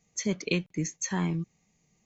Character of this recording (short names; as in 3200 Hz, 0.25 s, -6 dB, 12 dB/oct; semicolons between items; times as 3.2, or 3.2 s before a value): noise floor -72 dBFS; spectral tilt -4.5 dB/oct